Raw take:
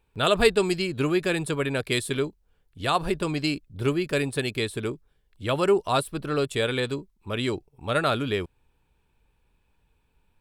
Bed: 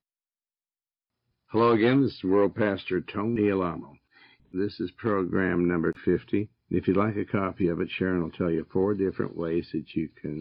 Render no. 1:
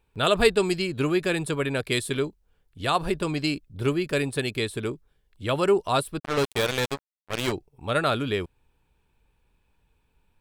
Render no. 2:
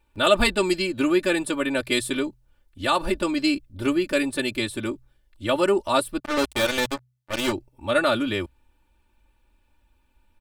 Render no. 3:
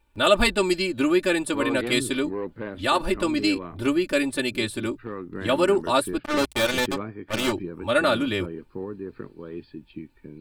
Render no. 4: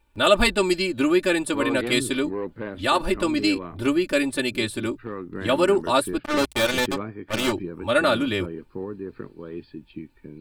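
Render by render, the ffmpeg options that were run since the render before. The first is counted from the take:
-filter_complex "[0:a]asplit=3[s0][s1][s2];[s0]afade=t=out:st=6.18:d=0.02[s3];[s1]acrusher=bits=3:mix=0:aa=0.5,afade=t=in:st=6.18:d=0.02,afade=t=out:st=7.51:d=0.02[s4];[s2]afade=t=in:st=7.51:d=0.02[s5];[s3][s4][s5]amix=inputs=3:normalize=0"
-af "aecho=1:1:3.4:0.95,bandreject=f=62.42:t=h:w=4,bandreject=f=124.84:t=h:w=4"
-filter_complex "[1:a]volume=0.355[s0];[0:a][s0]amix=inputs=2:normalize=0"
-af "volume=1.12"

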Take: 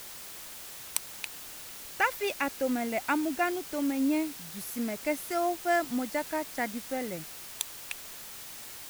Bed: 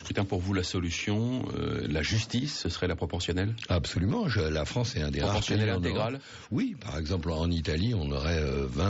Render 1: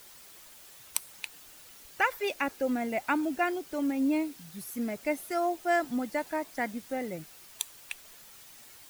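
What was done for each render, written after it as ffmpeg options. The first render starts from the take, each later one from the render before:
-af "afftdn=nr=9:nf=-44"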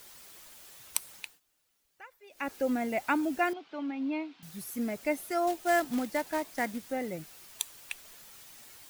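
-filter_complex "[0:a]asettb=1/sr,asplit=3[s0][s1][s2];[s0]atrim=end=3.534[s3];[s1]atrim=start=3.53:end=4.43,asetpts=PTS-STARTPTS,afade=t=in:d=0.004:c=qsin,afade=t=out:st=0.896:d=0.004:c=qsin,highpass=310,equalizer=f=370:t=q:w=4:g=-8,equalizer=f=530:t=q:w=4:g=-10,equalizer=f=1800:t=q:w=4:g=-5,lowpass=f=3800:w=0.5412,lowpass=f=3800:w=1.3066[s4];[s2]atrim=start=4.426[s5];[s3][s4]acrossfade=d=0.004:c1=hsin:c2=qsin[s6];[s6][s5]acrossfade=d=0.004:c1=qsin:c2=hsin,asettb=1/sr,asplit=3[s7][s8][s9];[s7]atrim=end=5.474[s10];[s8]atrim=start=5.47:end=6.78,asetpts=PTS-STARTPTS,afade=t=in:d=0.004:c=qsin,afade=t=out:st=1.306:d=0.004:c=qsin,acrusher=bits=3:mode=log:mix=0:aa=0.000001[s11];[s9]atrim=start=6.776[s12];[s10][s11]acrossfade=d=0.004:c1=hsin:c2=qsin[s13];[s13][s12]acrossfade=d=0.004:c1=qsin:c2=hsin,asplit=3[s14][s15][s16];[s14]atrim=end=1.4,asetpts=PTS-STARTPTS,afade=t=out:st=1.15:d=0.25:silence=0.0668344[s17];[s15]atrim=start=1.4:end=2.3,asetpts=PTS-STARTPTS,volume=0.0668[s18];[s16]atrim=start=2.3,asetpts=PTS-STARTPTS,afade=t=in:d=0.25:silence=0.0668344[s19];[s17][s18][s19]concat=n=3:v=0:a=1"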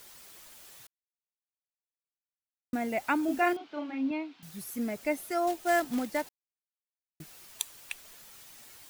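-filter_complex "[0:a]asettb=1/sr,asplit=3[s0][s1][s2];[s0]atrim=end=3.254[s3];[s1]atrim=start=3.25:end=4.11,asetpts=PTS-STARTPTS,afade=t=in:d=0.004:c=qsin,afade=t=out:st=0.856:d=0.004:c=qsin,asplit=2[s4][s5];[s5]adelay=34,volume=0.668[s6];[s4][s6]amix=inputs=2:normalize=0,atrim=end_sample=37926[s7];[s2]atrim=start=4.106[s8];[s3][s7]acrossfade=d=0.004:c1=hsin:c2=qsin[s9];[s9][s8]acrossfade=d=0.004:c1=qsin:c2=hsin,asplit=5[s10][s11][s12][s13][s14];[s10]atrim=end=0.87,asetpts=PTS-STARTPTS,afade=t=out:st=0.866:d=0.004:c=hsin[s15];[s11]atrim=start=0.87:end=2.73,asetpts=PTS-STARTPTS,volume=0[s16];[s12]atrim=start=2.73:end=6.29,asetpts=PTS-STARTPTS,afade=t=in:d=0.004:c=hsin,afade=t=out:st=3.556:d=0.004:c=hsin[s17];[s13]atrim=start=6.29:end=7.2,asetpts=PTS-STARTPTS,volume=0[s18];[s14]atrim=start=7.2,asetpts=PTS-STARTPTS,afade=t=in:d=0.004:c=hsin[s19];[s15][s16][s17][s18][s19]concat=n=5:v=0:a=1"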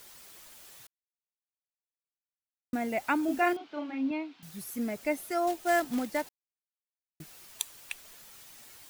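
-af anull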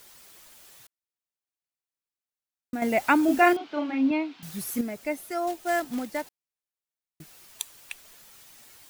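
-filter_complex "[0:a]asplit=3[s0][s1][s2];[s0]atrim=end=2.822[s3];[s1]atrim=start=2.818:end=4.812,asetpts=PTS-STARTPTS,volume=2.37[s4];[s2]atrim=start=4.808[s5];[s3][s4]acrossfade=d=0.004:c1=hsin:c2=hsin[s6];[s6][s5]acrossfade=d=0.004:c1=hsin:c2=hsin"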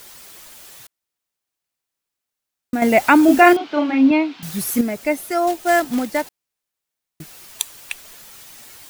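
-af "volume=3.16,alimiter=limit=0.891:level=0:latency=1"

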